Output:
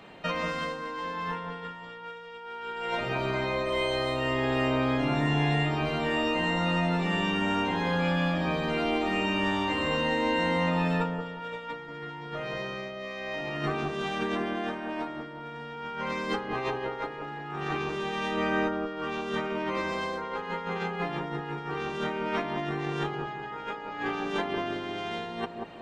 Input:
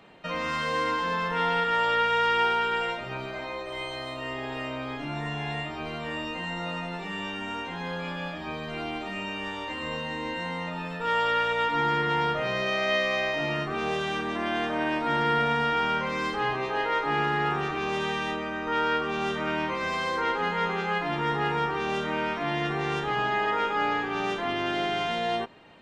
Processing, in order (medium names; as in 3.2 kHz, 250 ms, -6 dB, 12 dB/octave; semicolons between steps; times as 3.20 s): compressor with a negative ratio -32 dBFS, ratio -0.5; on a send: feedback echo behind a low-pass 184 ms, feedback 35%, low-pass 980 Hz, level -3 dB